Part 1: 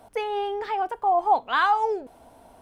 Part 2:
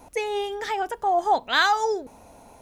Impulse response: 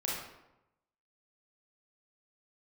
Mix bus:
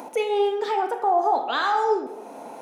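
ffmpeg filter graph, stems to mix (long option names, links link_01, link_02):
-filter_complex "[0:a]alimiter=limit=-20dB:level=0:latency=1,volume=0.5dB,asplit=2[link_01][link_02];[1:a]highshelf=frequency=2700:gain=-11,acompressor=mode=upward:threshold=-32dB:ratio=2.5,alimiter=limit=-16.5dB:level=0:latency=1:release=343,volume=-0.5dB,asplit=2[link_03][link_04];[link_04]volume=-6dB[link_05];[link_02]apad=whole_len=115290[link_06];[link_03][link_06]sidechaincompress=threshold=-28dB:ratio=8:attack=16:release=122[link_07];[2:a]atrim=start_sample=2205[link_08];[link_05][link_08]afir=irnorm=-1:irlink=0[link_09];[link_01][link_07][link_09]amix=inputs=3:normalize=0,highpass=frequency=230:width=0.5412,highpass=frequency=230:width=1.3066"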